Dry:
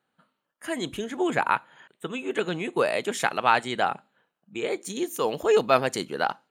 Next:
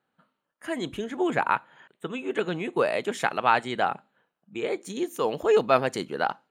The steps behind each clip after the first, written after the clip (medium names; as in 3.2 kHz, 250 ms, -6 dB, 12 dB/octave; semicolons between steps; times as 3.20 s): treble shelf 4.1 kHz -8 dB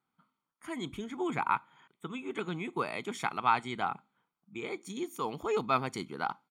comb 0.9 ms, depth 68%; trim -7.5 dB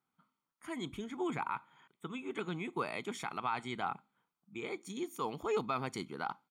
peak limiter -21 dBFS, peak gain reduction 8.5 dB; trim -2.5 dB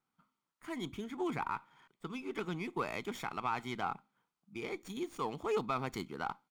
sliding maximum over 3 samples